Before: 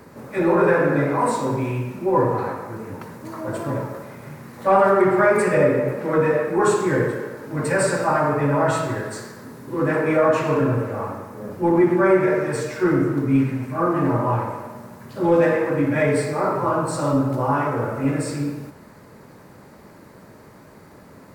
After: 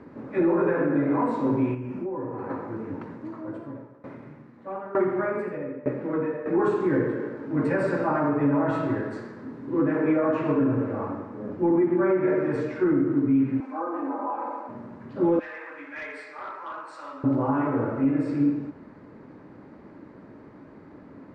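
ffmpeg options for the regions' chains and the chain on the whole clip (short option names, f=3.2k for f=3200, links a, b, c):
-filter_complex "[0:a]asettb=1/sr,asplit=3[a][b][c];[a]atrim=end=1.744[d];[b]atrim=start=1.74:end=2.5,asetpts=PTS-STARTPTS,afade=t=in:d=0.004:c=qsin,afade=t=out:st=0.756:d=0.004:c=qsin,equalizer=f=3.8k:t=o:w=0.22:g=-11.5,acompressor=threshold=-27dB:ratio=8:attack=3.2:release=140:knee=1:detection=peak[e];[c]atrim=start=2.496[f];[d][e]acrossfade=d=0.004:c1=hsin:c2=qsin[g];[g][f]acrossfade=d=0.004:c1=qsin:c2=hsin,asettb=1/sr,asplit=3[h][i][j];[h]atrim=end=3.134[k];[i]atrim=start=3.13:end=6.46,asetpts=PTS-STARTPTS,afade=t=in:d=0.004:c=qsin,afade=t=out:st=3.326:d=0.004:c=qsin,aecho=1:1:85:0.398,atrim=end_sample=146853,aeval=exprs='val(0)*pow(10,-20*if(lt(mod(1.1*n/s,1),2*abs(1.1)/1000),1-mod(1.1*n/s,1)/(2*abs(1.1)/1000),(mod(1.1*n/s,1)-2*abs(1.1)/1000)/(1-2*abs(1.1)/1000))/20)':c=same[l];[j]atrim=start=6.456[m];[k][l]acrossfade=d=0.004:c1=hsin:c2=qsin[n];[n][m]acrossfade=d=0.004:c1=qsin:c2=hsin,asettb=1/sr,asplit=3[o][p][q];[o]atrim=end=13.604[r];[p]atrim=start=13.6:end=14.69,asetpts=PTS-STARTPTS,afade=t=in:d=0.004:c=qsin,afade=t=out:st=1.086:d=0.004:c=qsin,acompressor=threshold=-23dB:ratio=3:attack=3.2:release=140:knee=1:detection=peak,highpass=f=350:w=0.5412,highpass=f=350:w=1.3066,equalizer=f=410:t=q:w=4:g=-9,equalizer=f=830:t=q:w=4:g=6,equalizer=f=1.9k:t=q:w=4:g=-6,equalizer=f=2.9k:t=q:w=4:g=-6,lowpass=f=8.7k:w=0.5412,lowpass=f=8.7k:w=1.3066,aecho=1:1:3.9:0.45,atrim=end_sample=48069[s];[q]atrim=start=14.686[t];[r][s]acrossfade=d=0.004:c1=hsin:c2=qsin[u];[u][t]acrossfade=d=0.004:c1=qsin:c2=hsin,asettb=1/sr,asplit=3[v][w][x];[v]atrim=end=15.394[y];[w]atrim=start=15.39:end=17.24,asetpts=PTS-STARTPTS,afade=t=in:d=0.004:c=qsin,afade=t=out:st=1.846:d=0.004:c=qsin,highpass=1.5k,asoftclip=type=hard:threshold=-26.5dB[z];[x]atrim=start=17.236[aa];[y][z]acrossfade=d=0.004:c1=hsin:c2=qsin[ab];[ab][aa]acrossfade=d=0.004:c1=qsin:c2=hsin,lowpass=2.5k,equalizer=f=290:t=o:w=0.67:g=10.5,alimiter=limit=-9.5dB:level=0:latency=1:release=266,volume=-5dB"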